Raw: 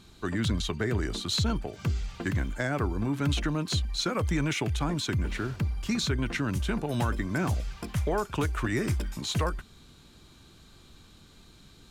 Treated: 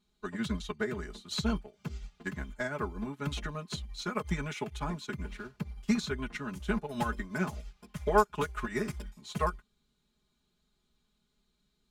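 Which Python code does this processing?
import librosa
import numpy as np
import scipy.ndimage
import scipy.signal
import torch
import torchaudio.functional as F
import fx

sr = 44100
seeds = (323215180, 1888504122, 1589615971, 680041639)

y = x + 0.97 * np.pad(x, (int(4.8 * sr / 1000.0), 0))[:len(x)]
y = fx.dynamic_eq(y, sr, hz=1100.0, q=1.1, threshold_db=-40.0, ratio=4.0, max_db=4)
y = fx.upward_expand(y, sr, threshold_db=-35.0, expansion=2.5)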